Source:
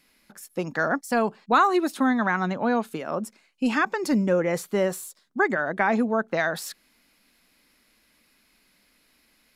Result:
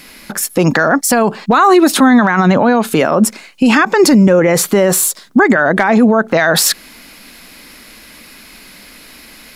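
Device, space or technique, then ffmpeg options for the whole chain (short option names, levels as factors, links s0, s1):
loud club master: -af "acompressor=threshold=0.0501:ratio=2.5,asoftclip=type=hard:threshold=0.15,alimiter=level_in=21.1:limit=0.891:release=50:level=0:latency=1,volume=0.891"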